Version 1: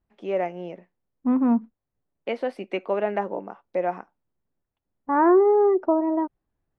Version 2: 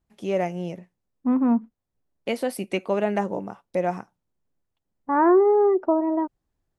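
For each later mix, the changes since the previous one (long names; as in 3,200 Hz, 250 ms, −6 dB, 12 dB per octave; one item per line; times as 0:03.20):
first voice: remove band-pass filter 300–2,500 Hz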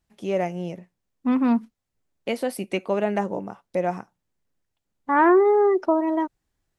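second voice: remove low-pass filter 1,100 Hz 12 dB per octave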